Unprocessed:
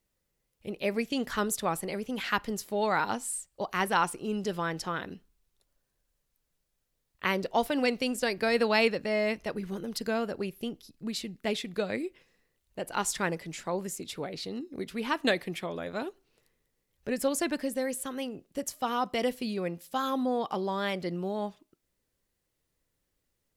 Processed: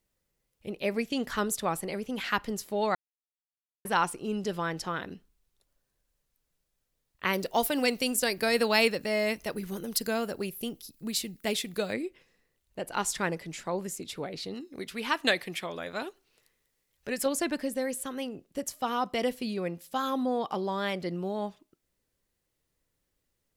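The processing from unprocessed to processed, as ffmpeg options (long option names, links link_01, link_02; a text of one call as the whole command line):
ffmpeg -i in.wav -filter_complex "[0:a]asettb=1/sr,asplit=3[link_01][link_02][link_03];[link_01]atrim=end=7.334[link_04];[link_02]atrim=start=7.33:end=11.94,asetpts=PTS-STARTPTS,afade=type=in:duration=0.004:curve=qsin,afade=type=out:start_time=4.606:duration=0.004:curve=qsin,aemphasis=mode=production:type=50fm[link_05];[link_03]atrim=start=11.936[link_06];[link_04][link_05]acrossfade=duration=0.004:curve1=hsin:curve2=qsin[link_07];[link_07][link_06]acrossfade=duration=0.004:curve1=qsin:curve2=hsin,asettb=1/sr,asplit=3[link_08][link_09][link_10];[link_08]atrim=end=14.544[link_11];[link_09]atrim=start=14.54:end=17.26,asetpts=PTS-STARTPTS,afade=type=in:duration=0.004:curve=qsin,afade=type=out:start_time=2.716:duration=0.004:curve=qsin,tiltshelf=frequency=780:gain=-4.5[link_12];[link_10]atrim=start=17.256[link_13];[link_11][link_12]acrossfade=duration=0.004:curve1=hsin:curve2=qsin[link_14];[link_14][link_13]acrossfade=duration=0.004:curve1=qsin:curve2=hsin,asplit=3[link_15][link_16][link_17];[link_15]atrim=end=2.95,asetpts=PTS-STARTPTS,afade=type=out:start_time=2.946:duration=0.004:curve=hsin[link_18];[link_16]atrim=start=2.95:end=3.85,asetpts=PTS-STARTPTS,volume=0[link_19];[link_17]atrim=start=3.85,asetpts=PTS-STARTPTS,afade=type=in:duration=0.004:curve=hsin[link_20];[link_18][link_19][link_20]concat=n=3:v=0:a=1" out.wav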